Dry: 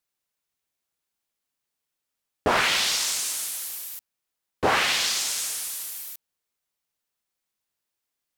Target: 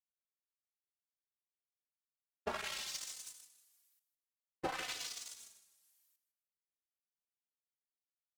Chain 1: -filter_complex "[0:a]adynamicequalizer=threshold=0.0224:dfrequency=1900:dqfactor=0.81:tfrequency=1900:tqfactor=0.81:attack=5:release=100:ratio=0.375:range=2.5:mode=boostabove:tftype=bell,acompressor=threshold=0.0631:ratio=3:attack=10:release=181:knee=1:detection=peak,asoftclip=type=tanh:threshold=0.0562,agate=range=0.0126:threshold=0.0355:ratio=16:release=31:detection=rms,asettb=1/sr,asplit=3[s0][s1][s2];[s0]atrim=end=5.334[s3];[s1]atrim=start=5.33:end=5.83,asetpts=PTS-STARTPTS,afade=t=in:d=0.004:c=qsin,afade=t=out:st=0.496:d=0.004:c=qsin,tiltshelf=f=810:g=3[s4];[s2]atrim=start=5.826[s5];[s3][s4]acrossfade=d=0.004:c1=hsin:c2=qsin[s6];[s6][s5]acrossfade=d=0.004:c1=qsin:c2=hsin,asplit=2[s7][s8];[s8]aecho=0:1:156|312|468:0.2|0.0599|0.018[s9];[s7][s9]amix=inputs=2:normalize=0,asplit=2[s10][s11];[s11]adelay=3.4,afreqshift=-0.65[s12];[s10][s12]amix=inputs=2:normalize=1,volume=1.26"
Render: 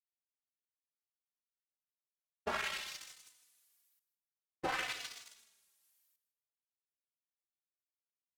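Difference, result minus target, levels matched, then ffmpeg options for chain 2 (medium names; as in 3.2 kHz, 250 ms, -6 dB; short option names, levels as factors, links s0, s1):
8 kHz band -8.0 dB
-filter_complex "[0:a]adynamicequalizer=threshold=0.0224:dfrequency=7100:dqfactor=0.81:tfrequency=7100:tqfactor=0.81:attack=5:release=100:ratio=0.375:range=2.5:mode=boostabove:tftype=bell,acompressor=threshold=0.0631:ratio=3:attack=10:release=181:knee=1:detection=peak,asoftclip=type=tanh:threshold=0.0562,agate=range=0.0126:threshold=0.0355:ratio=16:release=31:detection=rms,asettb=1/sr,asplit=3[s0][s1][s2];[s0]atrim=end=5.334[s3];[s1]atrim=start=5.33:end=5.83,asetpts=PTS-STARTPTS,afade=t=in:d=0.004:c=qsin,afade=t=out:st=0.496:d=0.004:c=qsin,tiltshelf=f=810:g=3[s4];[s2]atrim=start=5.826[s5];[s3][s4]acrossfade=d=0.004:c1=hsin:c2=qsin[s6];[s6][s5]acrossfade=d=0.004:c1=qsin:c2=hsin,asplit=2[s7][s8];[s8]aecho=0:1:156|312|468:0.2|0.0599|0.018[s9];[s7][s9]amix=inputs=2:normalize=0,asplit=2[s10][s11];[s11]adelay=3.4,afreqshift=-0.65[s12];[s10][s12]amix=inputs=2:normalize=1,volume=1.26"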